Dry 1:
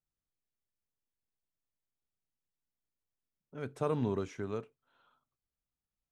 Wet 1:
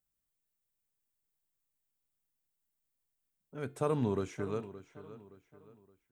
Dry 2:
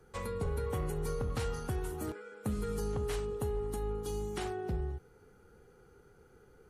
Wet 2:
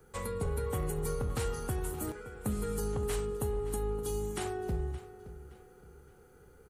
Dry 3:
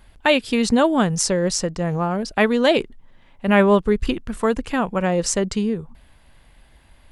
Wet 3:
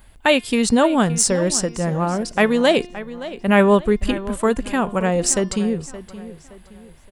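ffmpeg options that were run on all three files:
ffmpeg -i in.wav -filter_complex "[0:a]bandreject=frequency=353.5:width_type=h:width=4,bandreject=frequency=707:width_type=h:width=4,bandreject=frequency=1060.5:width_type=h:width=4,bandreject=frequency=1414:width_type=h:width=4,bandreject=frequency=1767.5:width_type=h:width=4,bandreject=frequency=2121:width_type=h:width=4,bandreject=frequency=2474.5:width_type=h:width=4,bandreject=frequency=2828:width_type=h:width=4,bandreject=frequency=3181.5:width_type=h:width=4,bandreject=frequency=3535:width_type=h:width=4,bandreject=frequency=3888.5:width_type=h:width=4,bandreject=frequency=4242:width_type=h:width=4,bandreject=frequency=4595.5:width_type=h:width=4,bandreject=frequency=4949:width_type=h:width=4,bandreject=frequency=5302.5:width_type=h:width=4,bandreject=frequency=5656:width_type=h:width=4,aexciter=amount=1.7:drive=7.4:freq=7400,asplit=2[link_01][link_02];[link_02]adelay=570,lowpass=frequency=4900:poles=1,volume=-15dB,asplit=2[link_03][link_04];[link_04]adelay=570,lowpass=frequency=4900:poles=1,volume=0.38,asplit=2[link_05][link_06];[link_06]adelay=570,lowpass=frequency=4900:poles=1,volume=0.38[link_07];[link_01][link_03][link_05][link_07]amix=inputs=4:normalize=0,volume=1dB" out.wav

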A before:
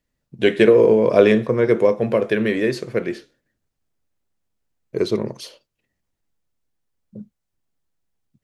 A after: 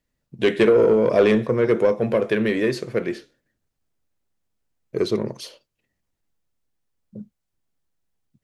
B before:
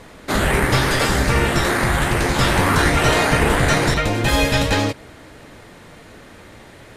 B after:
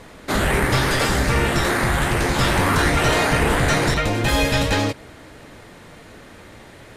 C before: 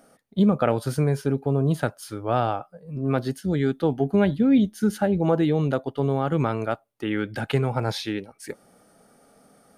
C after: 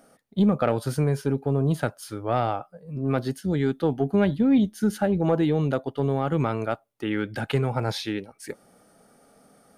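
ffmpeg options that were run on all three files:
ffmpeg -i in.wav -af "acontrast=65,volume=-7dB" out.wav

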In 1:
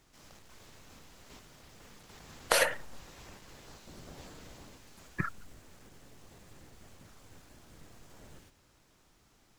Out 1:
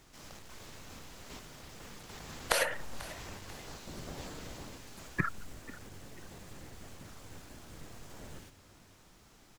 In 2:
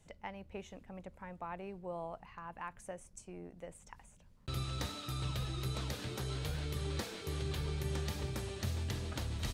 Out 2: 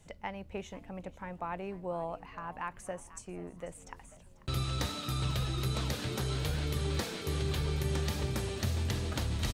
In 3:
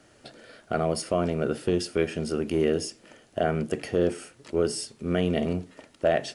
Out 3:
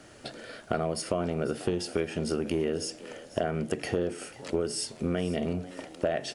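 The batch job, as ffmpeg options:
ffmpeg -i in.wav -filter_complex "[0:a]acompressor=threshold=-31dB:ratio=6,asplit=2[link_01][link_02];[link_02]asplit=3[link_03][link_04][link_05];[link_03]adelay=491,afreqshift=94,volume=-18dB[link_06];[link_04]adelay=982,afreqshift=188,volume=-26.9dB[link_07];[link_05]adelay=1473,afreqshift=282,volume=-35.7dB[link_08];[link_06][link_07][link_08]amix=inputs=3:normalize=0[link_09];[link_01][link_09]amix=inputs=2:normalize=0,volume=5.5dB" out.wav

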